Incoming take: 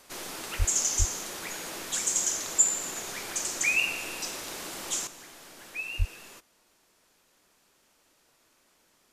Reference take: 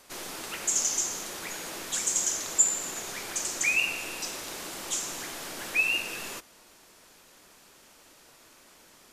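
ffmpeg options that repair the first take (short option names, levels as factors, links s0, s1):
-filter_complex "[0:a]asplit=3[s0][s1][s2];[s0]afade=t=out:st=0.58:d=0.02[s3];[s1]highpass=f=140:w=0.5412,highpass=f=140:w=1.3066,afade=t=in:st=0.58:d=0.02,afade=t=out:st=0.7:d=0.02[s4];[s2]afade=t=in:st=0.7:d=0.02[s5];[s3][s4][s5]amix=inputs=3:normalize=0,asplit=3[s6][s7][s8];[s6]afade=t=out:st=0.98:d=0.02[s9];[s7]highpass=f=140:w=0.5412,highpass=f=140:w=1.3066,afade=t=in:st=0.98:d=0.02,afade=t=out:st=1.1:d=0.02[s10];[s8]afade=t=in:st=1.1:d=0.02[s11];[s9][s10][s11]amix=inputs=3:normalize=0,asplit=3[s12][s13][s14];[s12]afade=t=out:st=5.98:d=0.02[s15];[s13]highpass=f=140:w=0.5412,highpass=f=140:w=1.3066,afade=t=in:st=5.98:d=0.02,afade=t=out:st=6.1:d=0.02[s16];[s14]afade=t=in:st=6.1:d=0.02[s17];[s15][s16][s17]amix=inputs=3:normalize=0,asetnsamples=n=441:p=0,asendcmd='5.07 volume volume 10.5dB',volume=1"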